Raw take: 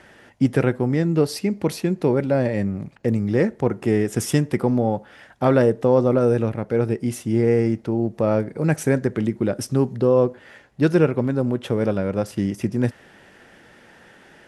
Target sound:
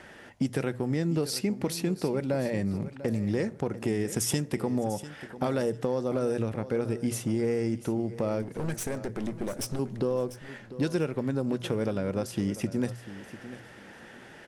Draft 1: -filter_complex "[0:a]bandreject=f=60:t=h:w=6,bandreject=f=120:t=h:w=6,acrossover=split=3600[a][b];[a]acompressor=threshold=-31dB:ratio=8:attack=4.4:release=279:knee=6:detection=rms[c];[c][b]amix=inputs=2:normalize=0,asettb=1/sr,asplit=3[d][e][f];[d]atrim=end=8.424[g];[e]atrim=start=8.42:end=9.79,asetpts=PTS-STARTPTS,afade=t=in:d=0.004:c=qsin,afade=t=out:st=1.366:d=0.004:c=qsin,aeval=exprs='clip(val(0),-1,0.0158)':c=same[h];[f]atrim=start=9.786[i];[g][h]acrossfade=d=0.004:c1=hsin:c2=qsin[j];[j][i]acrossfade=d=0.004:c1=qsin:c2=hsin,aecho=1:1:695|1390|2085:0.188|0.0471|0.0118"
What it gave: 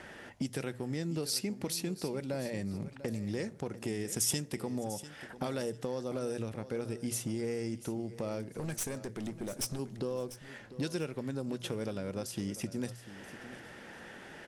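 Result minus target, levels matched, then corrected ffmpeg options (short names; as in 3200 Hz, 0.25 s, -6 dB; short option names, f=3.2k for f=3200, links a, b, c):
compressor: peak gain reduction +8 dB
-filter_complex "[0:a]bandreject=f=60:t=h:w=6,bandreject=f=120:t=h:w=6,acrossover=split=3600[a][b];[a]acompressor=threshold=-22dB:ratio=8:attack=4.4:release=279:knee=6:detection=rms[c];[c][b]amix=inputs=2:normalize=0,asettb=1/sr,asplit=3[d][e][f];[d]atrim=end=8.424[g];[e]atrim=start=8.42:end=9.79,asetpts=PTS-STARTPTS,afade=t=in:d=0.004:c=qsin,afade=t=out:st=1.366:d=0.004:c=qsin,aeval=exprs='clip(val(0),-1,0.0158)':c=same[h];[f]atrim=start=9.786[i];[g][h]acrossfade=d=0.004:c1=hsin:c2=qsin[j];[j][i]acrossfade=d=0.004:c1=qsin:c2=hsin,aecho=1:1:695|1390|2085:0.188|0.0471|0.0118"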